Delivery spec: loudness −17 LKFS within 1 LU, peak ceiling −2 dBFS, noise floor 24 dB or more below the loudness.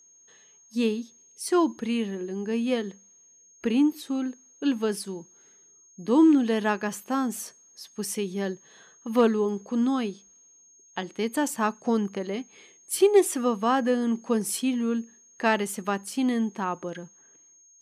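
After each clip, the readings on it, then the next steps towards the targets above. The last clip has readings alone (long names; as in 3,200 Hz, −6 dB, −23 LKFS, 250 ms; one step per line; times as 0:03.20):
interfering tone 6,500 Hz; level of the tone −54 dBFS; integrated loudness −26.5 LKFS; sample peak −9.5 dBFS; target loudness −17.0 LKFS
→ notch filter 6,500 Hz, Q 30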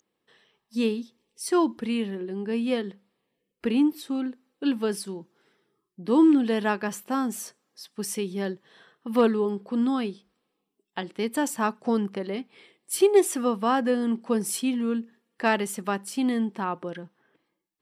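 interfering tone none found; integrated loudness −26.5 LKFS; sample peak −9.5 dBFS; target loudness −17.0 LKFS
→ level +9.5 dB
brickwall limiter −2 dBFS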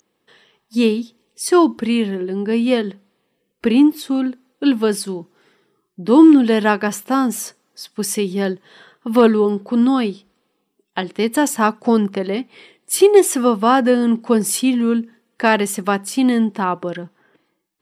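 integrated loudness −17.0 LKFS; sample peak −2.0 dBFS; background noise floor −70 dBFS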